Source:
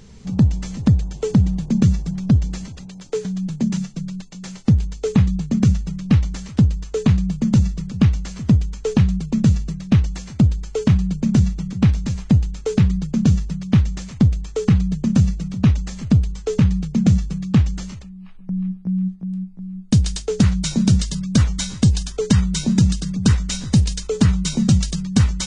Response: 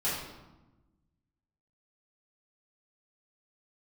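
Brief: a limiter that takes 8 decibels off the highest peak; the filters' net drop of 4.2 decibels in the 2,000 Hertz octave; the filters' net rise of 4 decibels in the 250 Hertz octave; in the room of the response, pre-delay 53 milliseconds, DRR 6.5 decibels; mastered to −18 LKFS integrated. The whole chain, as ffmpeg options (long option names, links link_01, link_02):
-filter_complex "[0:a]equalizer=frequency=250:width_type=o:gain=5.5,equalizer=frequency=2000:width_type=o:gain=-5.5,alimiter=limit=-7dB:level=0:latency=1,asplit=2[link_01][link_02];[1:a]atrim=start_sample=2205,adelay=53[link_03];[link_02][link_03]afir=irnorm=-1:irlink=0,volume=-14.5dB[link_04];[link_01][link_04]amix=inputs=2:normalize=0,volume=-0.5dB"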